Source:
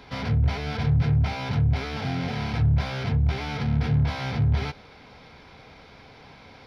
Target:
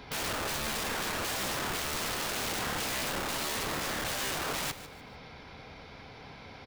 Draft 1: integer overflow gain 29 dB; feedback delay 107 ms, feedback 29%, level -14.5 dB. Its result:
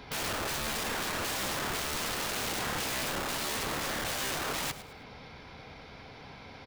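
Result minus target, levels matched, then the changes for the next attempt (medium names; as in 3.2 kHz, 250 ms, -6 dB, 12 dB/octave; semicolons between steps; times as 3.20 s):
echo 42 ms early
change: feedback delay 149 ms, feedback 29%, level -14.5 dB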